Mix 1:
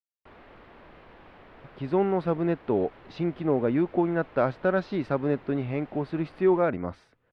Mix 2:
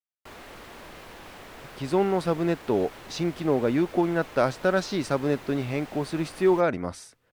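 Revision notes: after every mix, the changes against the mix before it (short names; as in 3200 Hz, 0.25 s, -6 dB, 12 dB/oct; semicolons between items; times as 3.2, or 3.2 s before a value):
background +4.5 dB; master: remove air absorption 390 m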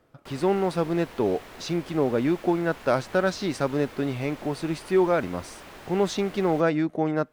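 speech: entry -1.50 s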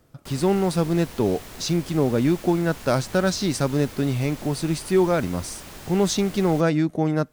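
master: add tone controls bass +9 dB, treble +12 dB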